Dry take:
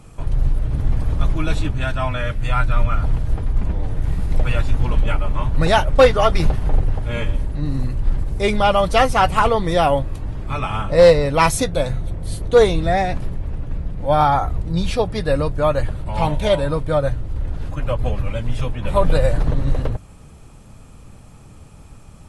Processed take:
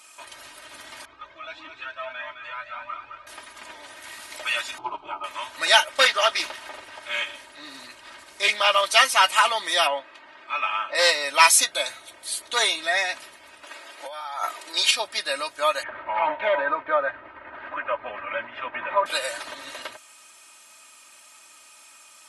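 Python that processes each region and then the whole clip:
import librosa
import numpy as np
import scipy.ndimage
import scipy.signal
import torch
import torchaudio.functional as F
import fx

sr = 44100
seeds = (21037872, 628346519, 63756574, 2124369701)

y = fx.chain(x, sr, fx.spacing_loss(db_at_10k=37),
    fx.echo_feedback(ms=213, feedback_pct=36, wet_db=-6),
    fx.comb_cascade(direction='rising', hz=1.6), at=(1.05, 3.27))
y = fx.chain(y, sr, fx.lowpass(hz=1100.0, slope=12),
    fx.fixed_phaser(hz=360.0, stages=8),
    fx.env_flatten(amount_pct=100), at=(4.78, 5.24))
y = fx.chain(y, sr, fx.high_shelf(hz=8500.0, db=-6.5),
    fx.doppler_dist(depth_ms=0.25), at=(6.08, 8.86))
y = fx.chain(y, sr, fx.lowpass(hz=2600.0, slope=12),
    fx.peak_eq(hz=69.0, db=-11.5, octaves=1.7), at=(9.87, 10.95))
y = fx.chain(y, sr, fx.highpass(hz=310.0, slope=24),
    fx.over_compress(threshold_db=-26.0, ratio=-1.0), at=(13.63, 14.91))
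y = fx.chain(y, sr, fx.lowpass(hz=1900.0, slope=24),
    fx.env_flatten(amount_pct=70), at=(15.83, 19.06))
y = scipy.signal.sosfilt(scipy.signal.bessel(2, 2100.0, 'highpass', norm='mag', fs=sr, output='sos'), y)
y = y + 0.7 * np.pad(y, (int(3.2 * sr / 1000.0), 0))[:len(y)]
y = y * 10.0 ** (6.5 / 20.0)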